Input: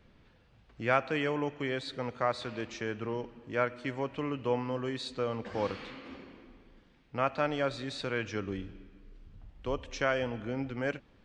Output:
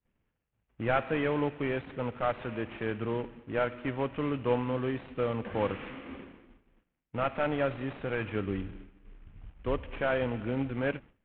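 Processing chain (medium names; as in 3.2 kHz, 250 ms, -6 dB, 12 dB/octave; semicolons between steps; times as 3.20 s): CVSD coder 16 kbps; expander -47 dBFS; bass shelf 370 Hz +4 dB; trim +1.5 dB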